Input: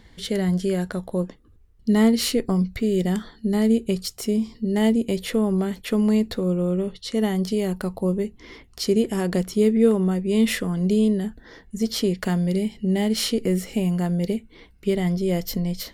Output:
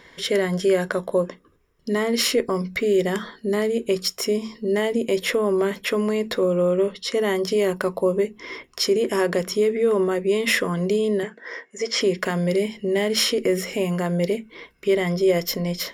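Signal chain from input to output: peak limiter -15.5 dBFS, peak gain reduction 9 dB; 11.23–12.01 s: cabinet simulation 390–7900 Hz, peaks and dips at 490 Hz +4 dB, 2.1 kHz +8 dB, 3.9 kHz -7 dB; reverberation RT60 0.15 s, pre-delay 3 ms, DRR 16 dB; trim +3 dB

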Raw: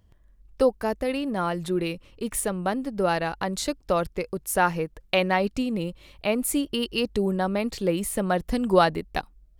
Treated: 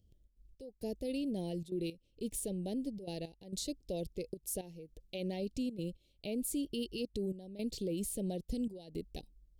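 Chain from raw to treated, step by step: Chebyshev band-stop 440–3700 Hz, order 2; peak limiter -22 dBFS, peak gain reduction 12 dB; trance gate "xxx.xx...xxxxxx" 166 bpm -12 dB; trim -7 dB

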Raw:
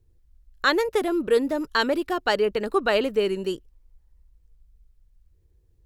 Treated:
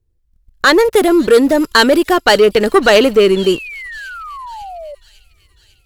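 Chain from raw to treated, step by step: 0.85–3.11 s: treble shelf 3.6 kHz +5.5 dB; waveshaping leveller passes 2; level rider gain up to 11.5 dB; 3.36–4.95 s: painted sound fall 560–3500 Hz -29 dBFS; feedback echo behind a high-pass 549 ms, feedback 61%, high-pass 4 kHz, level -16.5 dB

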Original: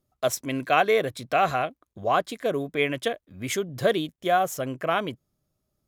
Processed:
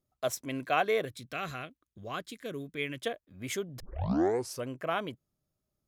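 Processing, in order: 1.05–3.02 s: peaking EQ 740 Hz -13.5 dB 1.3 oct; 3.80 s: tape start 0.88 s; trim -7 dB

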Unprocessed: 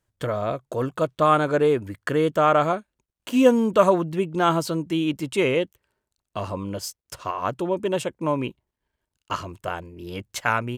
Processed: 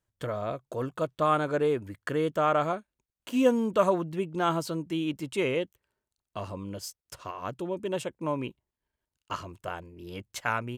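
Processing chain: 6.43–7.89 s: dynamic bell 960 Hz, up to -4 dB, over -37 dBFS, Q 0.73; trim -6.5 dB

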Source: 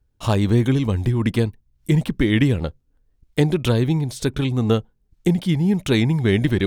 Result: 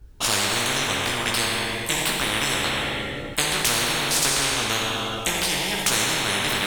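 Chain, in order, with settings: Schroeder reverb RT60 1.7 s, combs from 29 ms, DRR 1 dB; chorus voices 6, 0.32 Hz, delay 18 ms, depth 3.2 ms; spectrum-flattening compressor 10:1

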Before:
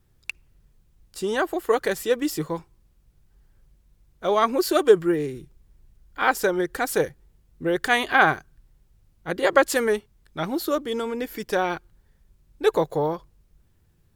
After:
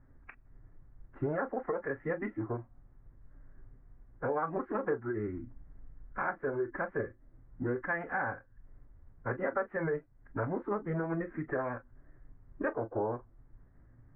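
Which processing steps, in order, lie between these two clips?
compression 4:1, threshold -38 dBFS, peak gain reduction 23.5 dB; formant-preserving pitch shift -6 st; steep low-pass 1.9 kHz 48 dB/octave; on a send: reverberation, pre-delay 7 ms, DRR 8.5 dB; on the sum: trim +4.5 dB

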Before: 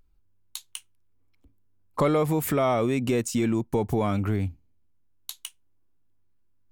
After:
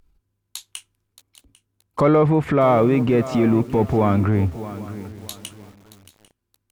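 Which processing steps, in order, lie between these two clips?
in parallel at -9 dB: small samples zeroed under -35 dBFS; on the sum: transient shaper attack -4 dB, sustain +4 dB; low-pass that closes with the level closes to 2 kHz, closed at -20.5 dBFS; Chebyshev shaper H 7 -40 dB, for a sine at -11.5 dBFS; on a send: feedback delay 797 ms, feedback 27%, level -21 dB; on the sum: bit-crushed delay 625 ms, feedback 35%, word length 7-bit, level -14 dB; trim +5 dB

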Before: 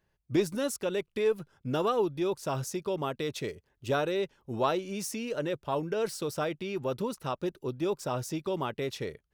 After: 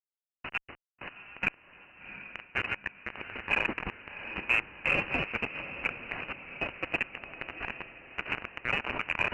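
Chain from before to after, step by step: chunks repeated in reverse 295 ms, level -1 dB; high-pass 430 Hz 12 dB/octave; waveshaping leveller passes 2; compressor with a negative ratio -34 dBFS, ratio -1; flange 0.48 Hz, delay 6.1 ms, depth 6.4 ms, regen -22%; bit crusher 5-bit; echo that smears into a reverb 733 ms, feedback 50%, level -10.5 dB; frequency inversion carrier 2.9 kHz; Chebyshev shaper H 6 -43 dB, 7 -40 dB, 8 -40 dB, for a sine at -16.5 dBFS; trim +4.5 dB

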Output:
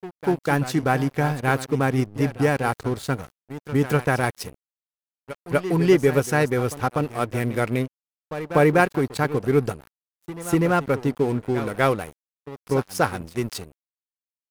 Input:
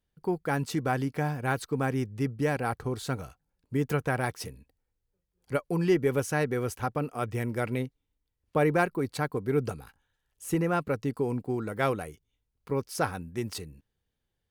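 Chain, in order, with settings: pre-echo 245 ms -12 dB; wow and flutter 26 cents; crossover distortion -43.5 dBFS; trim +8 dB

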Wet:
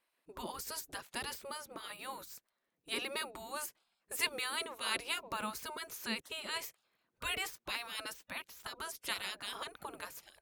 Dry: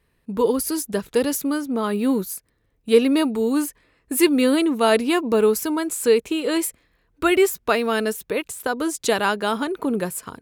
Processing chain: spectral gate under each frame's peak -15 dB weak; trim -8 dB

